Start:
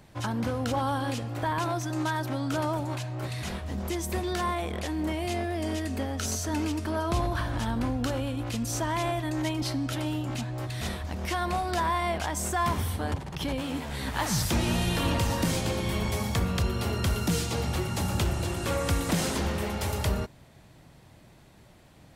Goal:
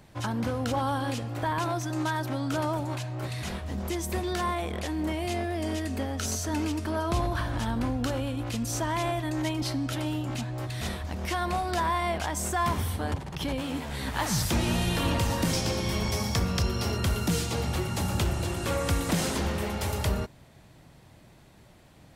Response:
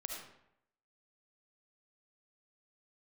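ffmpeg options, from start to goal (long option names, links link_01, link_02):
-filter_complex "[0:a]asettb=1/sr,asplit=3[link_01][link_02][link_03];[link_01]atrim=end=15.534[link_04];[link_02]atrim=start=15.53:end=16.97,asetpts=PTS-STARTPTS,afade=type=in:duration=0.004:curve=qsin,afade=type=out:start_time=1.436:duration=0.004:curve=qsin,equalizer=frequency=5400:width_type=o:width=0.31:gain=11[link_05];[link_03]atrim=start=16.966[link_06];[link_04][link_05]acrossfade=duration=0.004:curve1=hsin:curve2=qsin[link_07];[link_07][link_06]acrossfade=duration=0.004:curve1=qsin:curve2=hsin"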